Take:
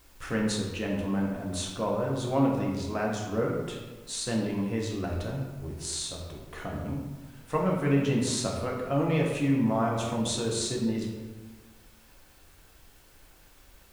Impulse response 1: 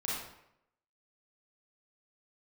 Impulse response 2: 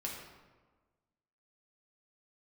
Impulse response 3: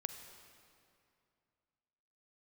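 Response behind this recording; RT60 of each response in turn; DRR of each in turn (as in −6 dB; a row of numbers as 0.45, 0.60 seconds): 2; 0.80, 1.4, 2.5 seconds; −7.0, −3.0, 7.5 decibels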